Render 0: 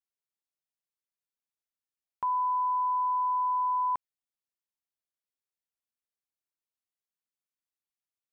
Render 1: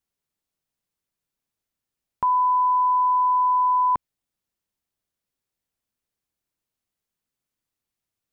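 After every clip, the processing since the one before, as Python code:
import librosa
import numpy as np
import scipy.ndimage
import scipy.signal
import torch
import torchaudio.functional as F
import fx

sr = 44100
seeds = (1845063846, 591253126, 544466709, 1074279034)

y = fx.low_shelf(x, sr, hz=350.0, db=11.0)
y = y * 10.0 ** (7.0 / 20.0)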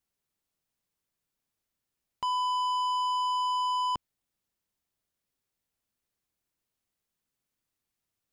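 y = 10.0 ** (-27.5 / 20.0) * np.tanh(x / 10.0 ** (-27.5 / 20.0))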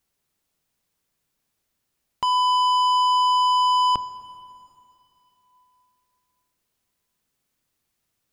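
y = fx.rev_plate(x, sr, seeds[0], rt60_s=3.0, hf_ratio=0.85, predelay_ms=0, drr_db=12.5)
y = y * 10.0 ** (8.5 / 20.0)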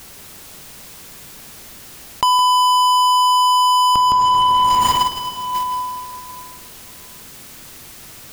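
y = fx.leveller(x, sr, passes=2)
y = y + 10.0 ** (-8.5 / 20.0) * np.pad(y, (int(163 * sr / 1000.0), 0))[:len(y)]
y = fx.env_flatten(y, sr, amount_pct=100)
y = y * 10.0 ** (1.5 / 20.0)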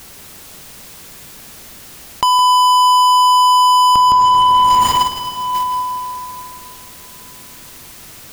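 y = fx.rev_plate(x, sr, seeds[1], rt60_s=4.6, hf_ratio=0.55, predelay_ms=0, drr_db=16.5)
y = y * 10.0 ** (1.5 / 20.0)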